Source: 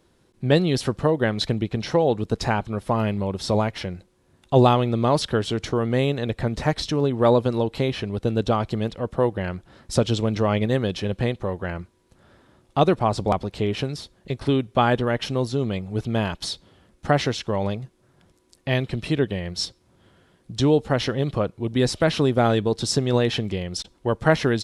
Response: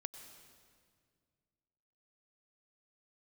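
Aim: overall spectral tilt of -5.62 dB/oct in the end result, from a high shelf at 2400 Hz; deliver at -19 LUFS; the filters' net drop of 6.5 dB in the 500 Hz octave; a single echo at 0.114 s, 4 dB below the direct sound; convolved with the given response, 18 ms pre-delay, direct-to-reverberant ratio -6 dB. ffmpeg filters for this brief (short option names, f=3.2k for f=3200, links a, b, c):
-filter_complex "[0:a]equalizer=f=500:t=o:g=-8,highshelf=f=2.4k:g=-3,aecho=1:1:114:0.631,asplit=2[a][b];[1:a]atrim=start_sample=2205,adelay=18[c];[b][c]afir=irnorm=-1:irlink=0,volume=9dB[d];[a][d]amix=inputs=2:normalize=0,volume=-1dB"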